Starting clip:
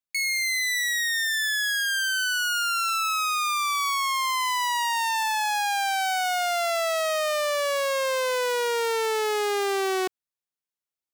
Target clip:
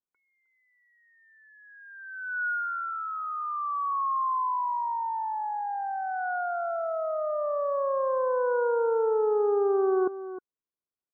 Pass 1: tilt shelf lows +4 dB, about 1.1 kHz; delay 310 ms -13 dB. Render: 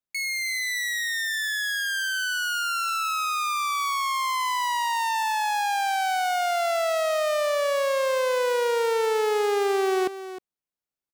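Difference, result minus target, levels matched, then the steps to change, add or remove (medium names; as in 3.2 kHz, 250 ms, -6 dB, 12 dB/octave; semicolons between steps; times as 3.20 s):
2 kHz band +6.5 dB
add first: rippled Chebyshev low-pass 1.5 kHz, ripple 6 dB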